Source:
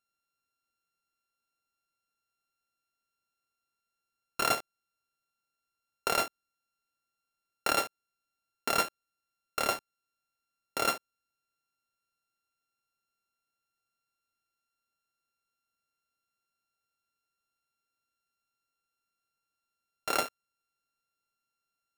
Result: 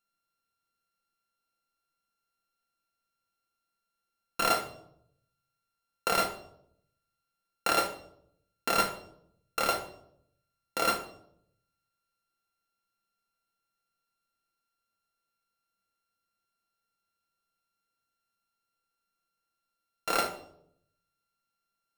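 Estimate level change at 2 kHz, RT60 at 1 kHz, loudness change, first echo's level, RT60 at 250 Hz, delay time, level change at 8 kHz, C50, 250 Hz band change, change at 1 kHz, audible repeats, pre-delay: +1.0 dB, 0.60 s, +1.5 dB, none, 0.95 s, none, 0.0 dB, 10.0 dB, +3.0 dB, +2.5 dB, none, 4 ms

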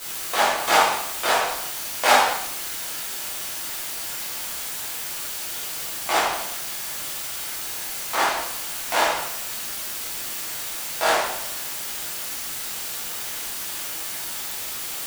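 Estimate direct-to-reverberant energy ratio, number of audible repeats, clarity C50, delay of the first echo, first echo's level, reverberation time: -9.5 dB, none, 1.0 dB, none, none, 0.75 s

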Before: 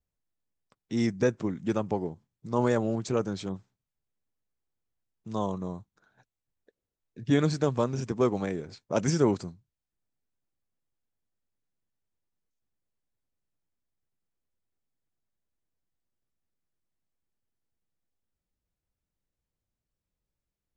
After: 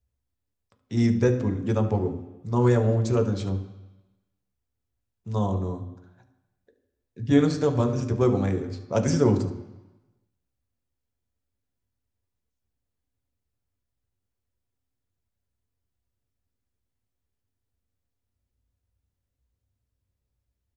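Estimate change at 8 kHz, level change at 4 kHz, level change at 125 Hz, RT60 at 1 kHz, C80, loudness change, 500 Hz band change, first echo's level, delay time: +0.5 dB, +0.5 dB, +8.5 dB, 1.1 s, 12.5 dB, +4.5 dB, +3.5 dB, -14.5 dB, 73 ms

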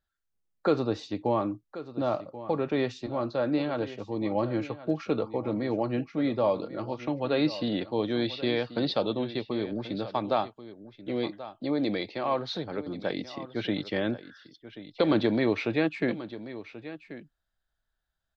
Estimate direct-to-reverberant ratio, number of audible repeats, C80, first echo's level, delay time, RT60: none, 1, none, -14.5 dB, 1.084 s, none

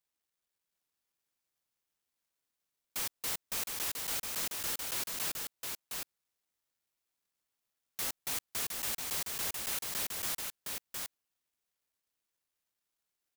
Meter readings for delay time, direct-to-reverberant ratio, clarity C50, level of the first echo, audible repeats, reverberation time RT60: 0.713 s, none, none, -4.0 dB, 1, none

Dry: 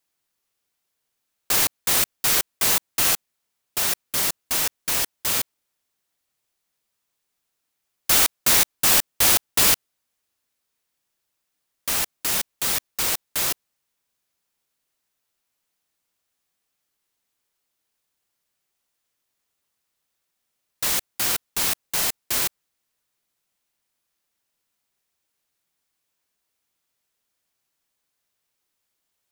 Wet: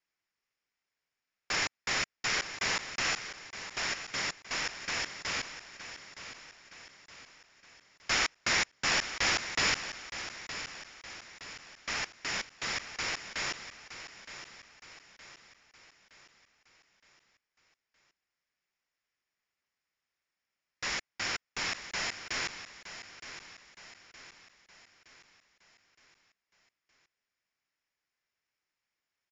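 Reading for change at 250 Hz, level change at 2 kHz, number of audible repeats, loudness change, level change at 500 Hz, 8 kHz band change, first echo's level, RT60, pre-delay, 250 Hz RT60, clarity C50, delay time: -8.5 dB, -2.0 dB, 4, -13.0 dB, -8.0 dB, -15.0 dB, -11.5 dB, none, none, none, none, 0.917 s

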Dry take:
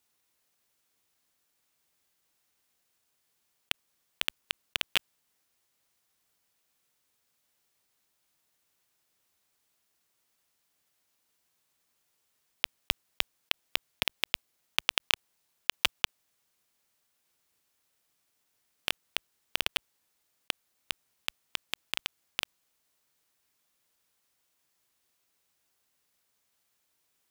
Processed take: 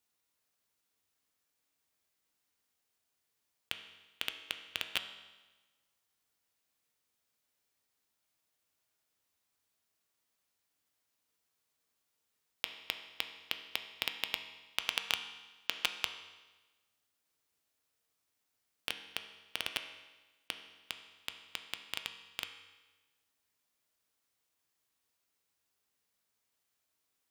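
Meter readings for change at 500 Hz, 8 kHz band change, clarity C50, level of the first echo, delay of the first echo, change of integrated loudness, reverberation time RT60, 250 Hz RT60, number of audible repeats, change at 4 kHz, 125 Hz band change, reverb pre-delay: -5.5 dB, -6.0 dB, 9.5 dB, none, none, -6.0 dB, 1.2 s, 1.2 s, none, -6.0 dB, -6.0 dB, 4 ms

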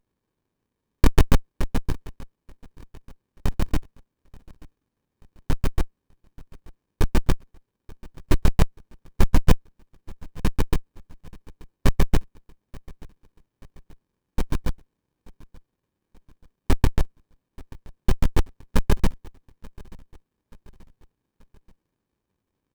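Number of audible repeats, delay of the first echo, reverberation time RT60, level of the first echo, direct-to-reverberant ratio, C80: 2, 0.882 s, none, -23.0 dB, none, none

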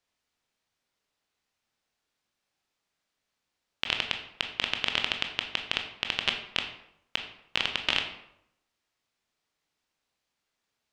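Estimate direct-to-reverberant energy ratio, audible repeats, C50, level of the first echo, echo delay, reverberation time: 4.0 dB, none, 8.0 dB, none, none, 0.80 s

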